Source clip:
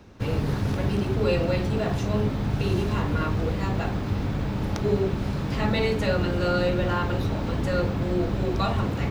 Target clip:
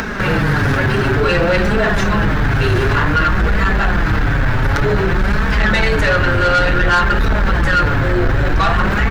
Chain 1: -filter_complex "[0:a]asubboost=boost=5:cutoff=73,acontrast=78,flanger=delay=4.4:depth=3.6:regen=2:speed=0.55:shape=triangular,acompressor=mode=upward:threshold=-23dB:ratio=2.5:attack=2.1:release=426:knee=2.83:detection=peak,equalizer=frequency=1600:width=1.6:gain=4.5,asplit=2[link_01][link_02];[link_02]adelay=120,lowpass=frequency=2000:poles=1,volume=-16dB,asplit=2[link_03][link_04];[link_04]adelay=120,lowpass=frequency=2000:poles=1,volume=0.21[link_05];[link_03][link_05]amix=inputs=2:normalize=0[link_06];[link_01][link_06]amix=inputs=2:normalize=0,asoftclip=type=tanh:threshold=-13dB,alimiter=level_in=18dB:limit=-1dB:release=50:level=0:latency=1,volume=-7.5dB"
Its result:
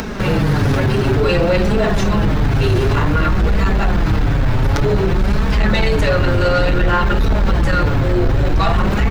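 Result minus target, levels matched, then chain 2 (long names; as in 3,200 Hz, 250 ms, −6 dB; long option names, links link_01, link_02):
2,000 Hz band −6.0 dB
-filter_complex "[0:a]asubboost=boost=5:cutoff=73,acontrast=78,flanger=delay=4.4:depth=3.6:regen=2:speed=0.55:shape=triangular,acompressor=mode=upward:threshold=-23dB:ratio=2.5:attack=2.1:release=426:knee=2.83:detection=peak,equalizer=frequency=1600:width=1.6:gain=15.5,asplit=2[link_01][link_02];[link_02]adelay=120,lowpass=frequency=2000:poles=1,volume=-16dB,asplit=2[link_03][link_04];[link_04]adelay=120,lowpass=frequency=2000:poles=1,volume=0.21[link_05];[link_03][link_05]amix=inputs=2:normalize=0[link_06];[link_01][link_06]amix=inputs=2:normalize=0,asoftclip=type=tanh:threshold=-13dB,alimiter=level_in=18dB:limit=-1dB:release=50:level=0:latency=1,volume=-7.5dB"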